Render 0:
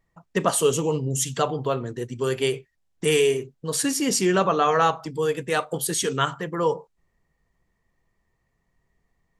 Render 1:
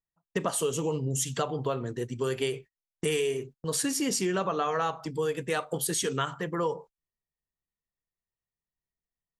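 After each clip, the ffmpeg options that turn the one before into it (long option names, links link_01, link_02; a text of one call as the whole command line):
ffmpeg -i in.wav -af "agate=range=-24dB:threshold=-40dB:ratio=16:detection=peak,acompressor=threshold=-23dB:ratio=6,volume=-2dB" out.wav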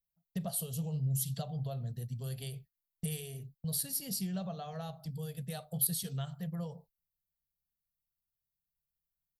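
ffmpeg -i in.wav -af "firequalizer=gain_entry='entry(180,0);entry(310,-28);entry(680,-7);entry(970,-25);entry(1700,-20);entry(2400,-19);entry(4300,-3);entry(6600,-17);entry(12000,8)':delay=0.05:min_phase=1" out.wav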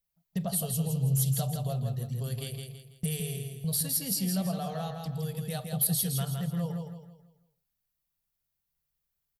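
ffmpeg -i in.wav -filter_complex "[0:a]asoftclip=type=tanh:threshold=-23dB,asplit=2[link_01][link_02];[link_02]aecho=0:1:164|328|492|656|820:0.562|0.208|0.077|0.0285|0.0105[link_03];[link_01][link_03]amix=inputs=2:normalize=0,volume=5.5dB" out.wav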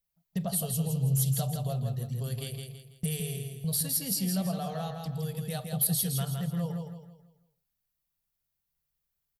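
ffmpeg -i in.wav -af anull out.wav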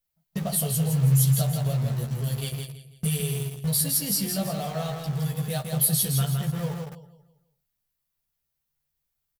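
ffmpeg -i in.wav -filter_complex "[0:a]asplit=2[link_01][link_02];[link_02]acrusher=bits=5:mix=0:aa=0.000001,volume=-7.5dB[link_03];[link_01][link_03]amix=inputs=2:normalize=0,asplit=2[link_04][link_05];[link_05]adelay=14,volume=-2dB[link_06];[link_04][link_06]amix=inputs=2:normalize=0" out.wav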